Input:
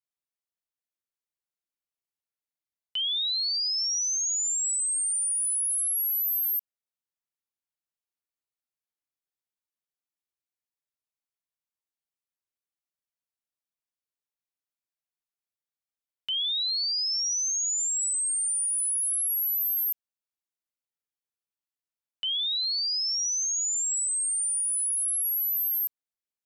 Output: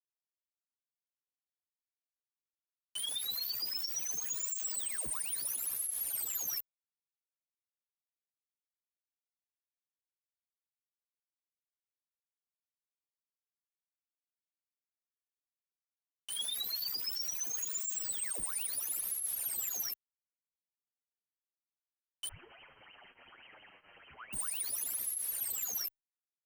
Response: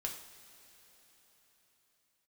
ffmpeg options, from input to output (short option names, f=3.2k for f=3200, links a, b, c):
-filter_complex "[0:a]equalizer=f=160:w=0.61:g=13.5,aecho=1:1:3.2:0.54,bandreject=f=48.24:t=h:w=4,bandreject=f=96.48:t=h:w=4,bandreject=f=144.72:t=h:w=4,bandreject=f=192.96:t=h:w=4,bandreject=f=241.2:t=h:w=4,bandreject=f=289.44:t=h:w=4,bandreject=f=337.68:t=h:w=4,bandreject=f=385.92:t=h:w=4,bandreject=f=434.16:t=h:w=4,bandreject=f=482.4:t=h:w=4,bandreject=f=530.64:t=h:w=4,bandreject=f=578.88:t=h:w=4,bandreject=f=627.12:t=h:w=4,bandreject=f=675.36:t=h:w=4,bandreject=f=723.6:t=h:w=4,bandreject=f=771.84:t=h:w=4,bandreject=f=820.08:t=h:w=4,bandreject=f=868.32:t=h:w=4,bandreject=f=916.56:t=h:w=4,bandreject=f=964.8:t=h:w=4,bandreject=f=1.01304k:t=h:w=4,bandreject=f=1.06128k:t=h:w=4,bandreject=f=1.10952k:t=h:w=4,bandreject=f=1.15776k:t=h:w=4,bandreject=f=1.206k:t=h:w=4,bandreject=f=1.25424k:t=h:w=4,bandreject=f=1.30248k:t=h:w=4,bandreject=f=1.35072k:t=h:w=4,bandreject=f=1.39896k:t=h:w=4,acrusher=bits=6:mix=0:aa=0.000001,aeval=exprs='0.0316*(abs(mod(val(0)/0.0316+3,4)-2)-1)':c=same,asettb=1/sr,asplit=3[a][b][c];[a]atrim=end=22.284[d];[b]atrim=start=22.28:end=24.33,asetpts=PTS-STARTPTS,afade=t=in:d=0.004:c=qsin,afade=t=out:st=2.046:d=0.004:c=qsin,lowpass=f=2.7k:t=q:w=0.5098,lowpass=f=2.7k:t=q:w=0.6013,lowpass=f=2.7k:t=q:w=0.9,lowpass=f=2.7k:t=q:w=2.563,afreqshift=-3200[e];[c]atrim=start=24.326[f];[d][e]acrossfade=d=0.004:c1=hsin:c2=qsin[g];[g][f]acrossfade=d=0.004:c1=qsin:c2=hsin,asplit=2[h][i];[i]adelay=8,afreqshift=-1.3[j];[h][j]amix=inputs=2:normalize=1"